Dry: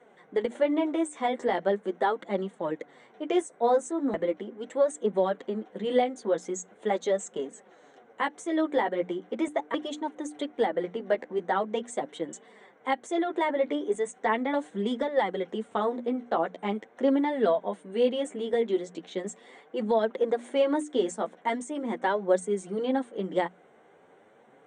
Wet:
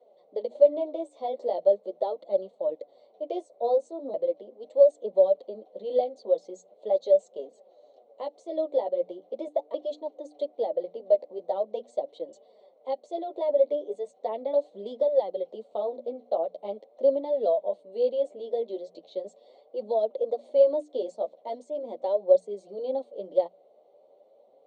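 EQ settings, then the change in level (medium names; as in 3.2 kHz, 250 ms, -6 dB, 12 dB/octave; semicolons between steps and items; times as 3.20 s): two resonant band-passes 1.6 kHz, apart 2.9 oct; treble shelf 3.4 kHz -11 dB; +8.5 dB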